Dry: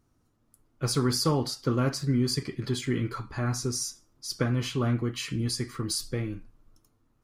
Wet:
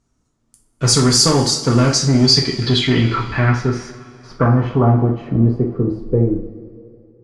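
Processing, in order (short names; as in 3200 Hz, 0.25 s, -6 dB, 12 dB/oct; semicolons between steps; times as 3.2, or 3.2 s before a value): sample leveller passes 2; low-pass sweep 7500 Hz -> 460 Hz, 1.8–5.7; two-slope reverb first 0.37 s, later 2.6 s, from -18 dB, DRR 1 dB; gain +4 dB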